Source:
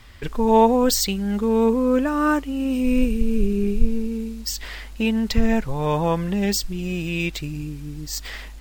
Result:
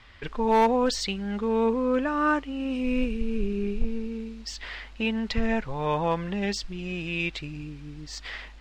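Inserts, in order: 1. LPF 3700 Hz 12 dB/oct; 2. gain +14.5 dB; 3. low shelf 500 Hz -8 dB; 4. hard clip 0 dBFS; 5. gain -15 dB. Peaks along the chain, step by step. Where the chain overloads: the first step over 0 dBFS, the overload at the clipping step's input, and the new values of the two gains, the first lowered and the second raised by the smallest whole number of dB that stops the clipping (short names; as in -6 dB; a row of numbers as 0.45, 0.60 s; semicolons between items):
-4.0, +10.5, +7.0, 0.0, -15.0 dBFS; step 2, 7.0 dB; step 2 +7.5 dB, step 5 -8 dB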